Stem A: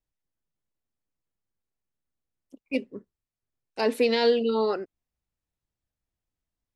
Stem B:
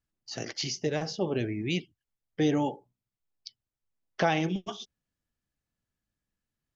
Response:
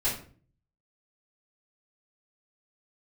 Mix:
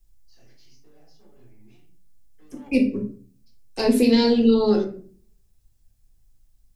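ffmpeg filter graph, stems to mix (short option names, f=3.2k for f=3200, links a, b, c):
-filter_complex "[0:a]lowshelf=f=150:g=11.5,acrossover=split=350[a][b];[b]acompressor=threshold=-41dB:ratio=2[c];[a][c]amix=inputs=2:normalize=0,bass=f=250:g=3,treble=f=4k:g=12,volume=3dB,asplit=3[d][e][f];[e]volume=-5.5dB[g];[1:a]asoftclip=type=tanh:threshold=-29dB,acompressor=threshold=-39dB:ratio=4,volume=-9dB,asplit=2[h][i];[i]volume=-17.5dB[j];[f]apad=whole_len=297921[k];[h][k]sidechaingate=range=-33dB:threshold=-59dB:ratio=16:detection=peak[l];[2:a]atrim=start_sample=2205[m];[g][j]amix=inputs=2:normalize=0[n];[n][m]afir=irnorm=-1:irlink=0[o];[d][l][o]amix=inputs=3:normalize=0"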